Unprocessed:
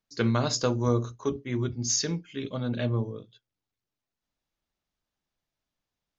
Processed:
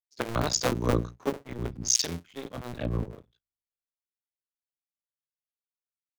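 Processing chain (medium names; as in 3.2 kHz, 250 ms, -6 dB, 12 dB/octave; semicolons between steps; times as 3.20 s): cycle switcher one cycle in 2, muted; three bands expanded up and down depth 70%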